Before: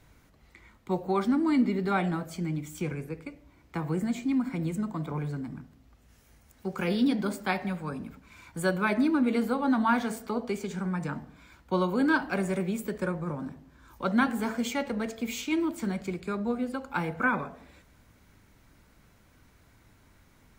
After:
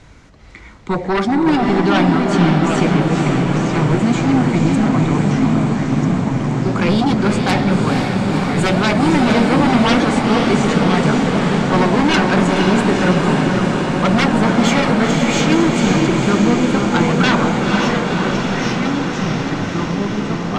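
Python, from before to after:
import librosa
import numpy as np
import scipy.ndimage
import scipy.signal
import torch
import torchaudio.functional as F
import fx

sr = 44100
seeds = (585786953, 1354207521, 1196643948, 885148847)

y = scipy.signal.sosfilt(scipy.signal.butter(4, 7600.0, 'lowpass', fs=sr, output='sos'), x)
y = fx.fold_sine(y, sr, drive_db=12, ceiling_db=-11.5)
y = fx.echo_diffused(y, sr, ms=498, feedback_pct=77, wet_db=-3.5)
y = fx.echo_pitch(y, sr, ms=392, semitones=-3, count=3, db_per_echo=-6.0)
y = y * 10.0 ** (-1.0 / 20.0)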